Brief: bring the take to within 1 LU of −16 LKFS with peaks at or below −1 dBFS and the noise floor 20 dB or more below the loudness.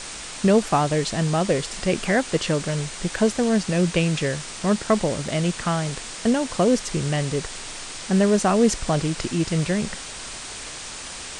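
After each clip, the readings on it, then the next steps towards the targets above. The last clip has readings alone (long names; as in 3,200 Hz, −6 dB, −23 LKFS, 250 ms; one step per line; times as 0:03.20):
number of dropouts 1; longest dropout 3.7 ms; background noise floor −36 dBFS; target noise floor −43 dBFS; integrated loudness −23.0 LKFS; sample peak −6.5 dBFS; target loudness −16.0 LKFS
→ repair the gap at 0:05.28, 3.7 ms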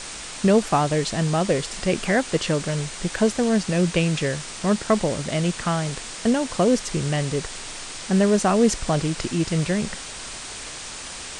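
number of dropouts 0; background noise floor −36 dBFS; target noise floor −43 dBFS
→ broadband denoise 7 dB, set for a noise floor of −36 dBFS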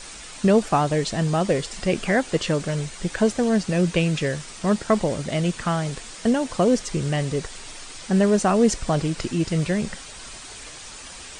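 background noise floor −40 dBFS; target noise floor −43 dBFS
→ broadband denoise 6 dB, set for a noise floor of −40 dBFS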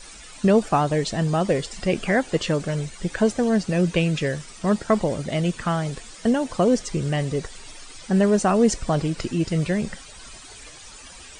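background noise floor −43 dBFS; integrated loudness −23.0 LKFS; sample peak −7.0 dBFS; target loudness −16.0 LKFS
→ level +7 dB
brickwall limiter −1 dBFS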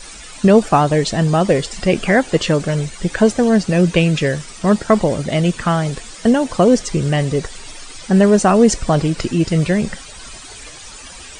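integrated loudness −16.0 LKFS; sample peak −1.0 dBFS; background noise floor −36 dBFS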